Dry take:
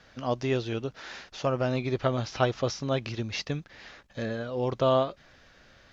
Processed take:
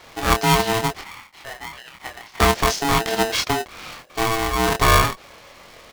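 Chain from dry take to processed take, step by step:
in parallel at −0.5 dB: brickwall limiter −21 dBFS, peak gain reduction 11.5 dB
0:01.01–0:02.40: on the sum: four-pole ladder band-pass 1,700 Hz, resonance 55%
double-tracking delay 25 ms −3.5 dB
ring modulator with a square carrier 560 Hz
level +4 dB

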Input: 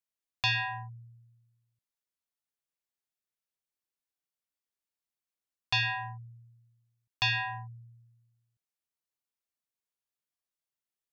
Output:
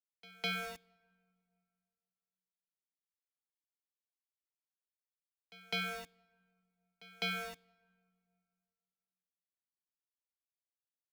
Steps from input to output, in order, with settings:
centre clipping without the shift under −35.5 dBFS
frequency shifter −300 Hz
echo ahead of the sound 205 ms −21 dB
on a send at −24 dB: convolution reverb RT60 2.2 s, pre-delay 3 ms
on the sum: level −8.5 dB

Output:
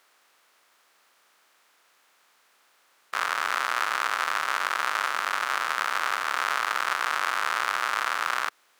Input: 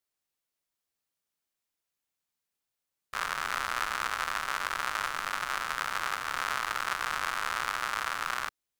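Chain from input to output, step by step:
compressor on every frequency bin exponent 0.6
high-pass filter 340 Hz 12 dB per octave
high-shelf EQ 4,800 Hz −4.5 dB
level +3.5 dB

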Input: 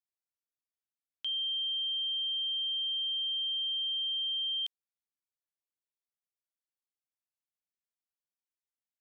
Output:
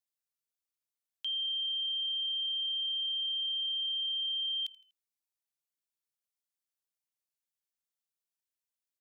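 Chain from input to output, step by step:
high-shelf EQ 2,900 Hz +9 dB
echo with shifted repeats 81 ms, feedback 42%, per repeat −35 Hz, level −20.5 dB
level −5.5 dB

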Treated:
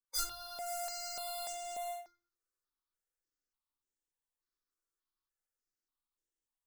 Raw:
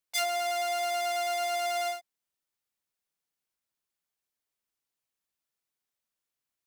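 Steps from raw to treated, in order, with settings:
running median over 3 samples
mains-hum notches 50/100 Hz
noise reduction from a noise print of the clip's start 21 dB
0:00.66–0:01.53: high-shelf EQ 3,700 Hz +9 dB
in parallel at −2 dB: speech leveller 0.5 s
on the sum: soft clipping −32 dBFS, distortion −9 dB
phaser with its sweep stopped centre 650 Hz, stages 6
convolution reverb RT60 0.40 s, pre-delay 3 ms, DRR −2 dB
step-sequenced phaser 3.4 Hz 830–4,400 Hz
level +9 dB

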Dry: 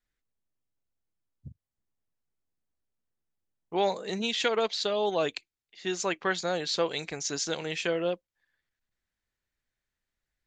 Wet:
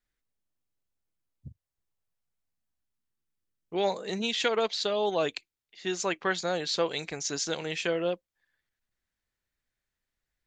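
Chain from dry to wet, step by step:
0:01.48–0:03.83: parametric band 180 Hz → 940 Hz −9.5 dB 0.65 octaves

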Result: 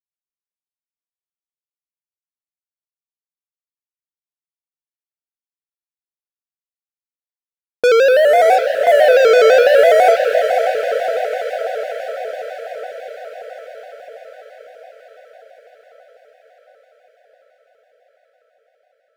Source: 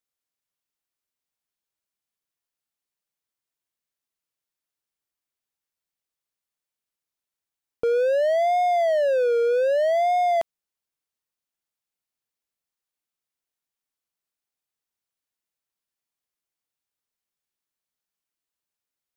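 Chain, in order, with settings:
treble cut that deepens with the level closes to 450 Hz, closed at −19.5 dBFS
noise gate with hold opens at −25 dBFS
parametric band 440 Hz +10.5 dB 0.72 octaves
leveller curve on the samples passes 5
brickwall limiter −11.5 dBFS, peak gain reduction 4.5 dB
feedback delay with all-pass diffusion 560 ms, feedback 68%, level −7 dB
convolution reverb RT60 2.1 s, pre-delay 108 ms, DRR 15 dB
pitch modulation by a square or saw wave square 6 Hz, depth 100 cents
level +2 dB

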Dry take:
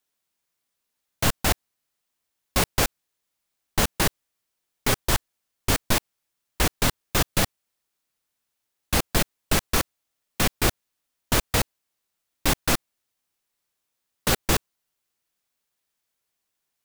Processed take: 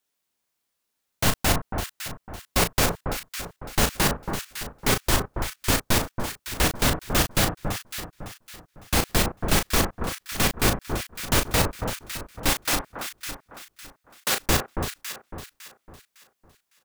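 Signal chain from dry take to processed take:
0:12.49–0:14.36: high-pass filter 890 Hz 6 dB per octave
double-tracking delay 35 ms −7 dB
delay that swaps between a low-pass and a high-pass 278 ms, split 1,400 Hz, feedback 57%, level −5 dB

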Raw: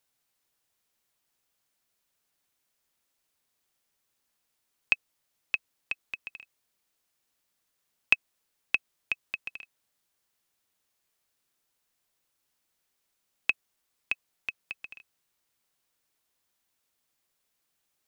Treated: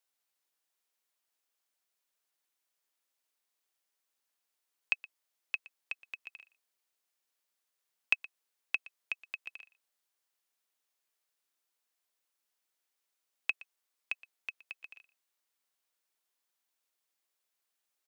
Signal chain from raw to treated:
Bessel high-pass filter 400 Hz, order 2
on a send: single-tap delay 119 ms −20 dB
on the sum: level −6 dB

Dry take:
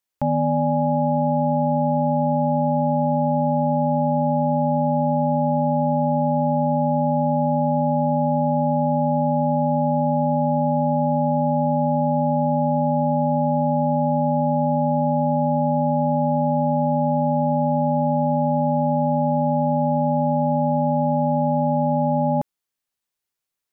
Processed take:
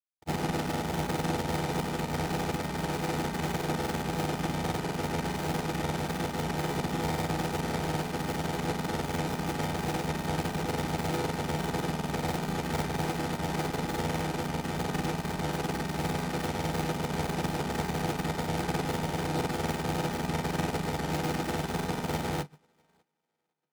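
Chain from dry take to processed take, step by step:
each half-wave held at its own peak
mains-hum notches 50/100/150/200 Hz
wave folding −21 dBFS
notch comb filter 550 Hz
feedback echo with a high-pass in the loop 565 ms, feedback 49%, high-pass 200 Hz, level −13 dB
granular cloud 100 ms, pitch spread up and down by 0 semitones
expander for the loud parts 2.5 to 1, over −48 dBFS

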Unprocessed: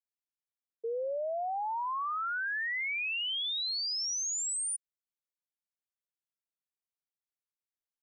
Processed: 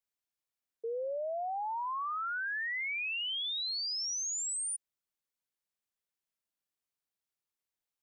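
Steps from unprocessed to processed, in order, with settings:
brickwall limiter −35 dBFS, peak gain reduction 4.5 dB
level +2.5 dB

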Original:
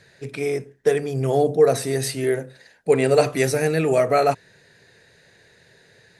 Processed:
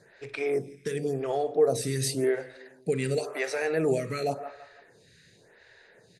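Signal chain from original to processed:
low-pass filter 11,000 Hz
repeating echo 166 ms, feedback 38%, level −20.5 dB
downward compressor 2.5 to 1, threshold −21 dBFS, peak gain reduction 8 dB
0:03.18–0:03.63: high-pass filter 920 Hz → 260 Hz 12 dB per octave
convolution reverb, pre-delay 43 ms, DRR 14 dB
phaser with staggered stages 0.92 Hz

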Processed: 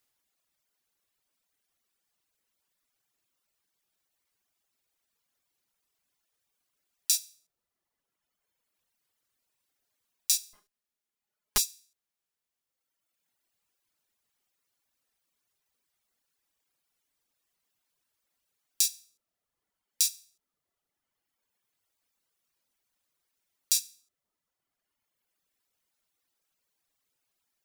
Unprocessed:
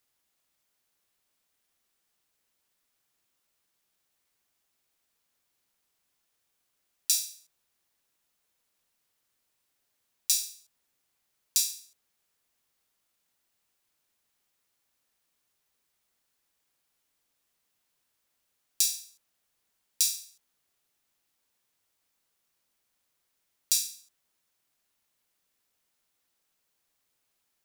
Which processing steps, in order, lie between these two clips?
0:10.53–0:11.58: lower of the sound and its delayed copy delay 4.8 ms
reverb reduction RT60 1.7 s

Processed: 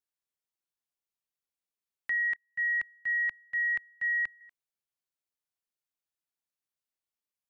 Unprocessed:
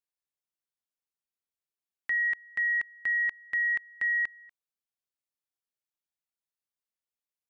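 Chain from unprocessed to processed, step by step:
0:02.36–0:04.41: multiband upward and downward expander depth 100%
level −1.5 dB

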